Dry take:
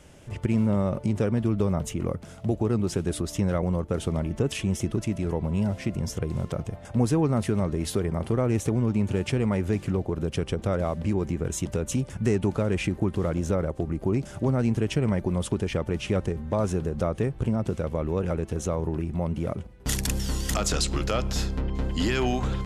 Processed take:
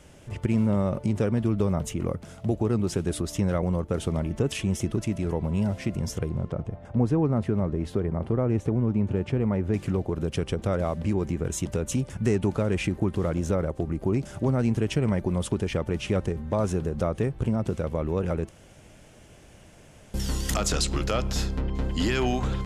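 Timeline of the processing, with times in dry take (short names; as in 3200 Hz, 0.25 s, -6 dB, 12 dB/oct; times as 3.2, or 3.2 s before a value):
6.29–9.74 LPF 1100 Hz 6 dB/oct
18.49–20.14 room tone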